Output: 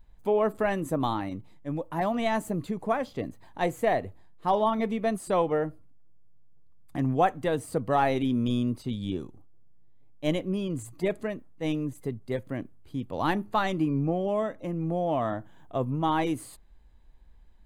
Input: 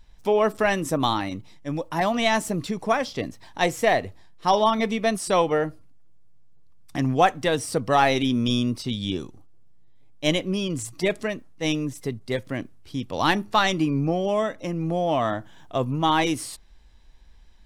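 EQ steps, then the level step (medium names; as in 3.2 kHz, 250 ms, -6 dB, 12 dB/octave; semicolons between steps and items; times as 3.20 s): Butterworth band-stop 5.5 kHz, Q 6.6; peaking EQ 4.6 kHz -11 dB 2.7 oct; -3.0 dB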